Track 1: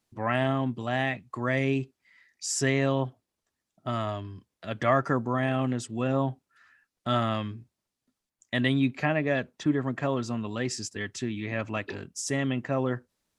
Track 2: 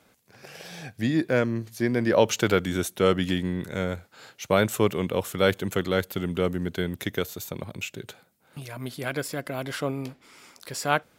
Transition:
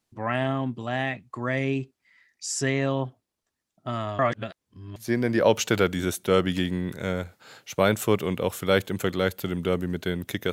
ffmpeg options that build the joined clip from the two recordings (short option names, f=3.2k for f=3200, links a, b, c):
-filter_complex "[0:a]apad=whole_dur=10.52,atrim=end=10.52,asplit=2[a][b];[a]atrim=end=4.192[c];[b]atrim=start=4.188:end=4.962,asetpts=PTS-STARTPTS,areverse[d];[1:a]atrim=start=1.678:end=7.24[e];[c][d]acrossfade=d=0.004:c1=hsin:c2=hsin[f];[f][e]acrossfade=d=0.004:c1=hsin:c2=hsin"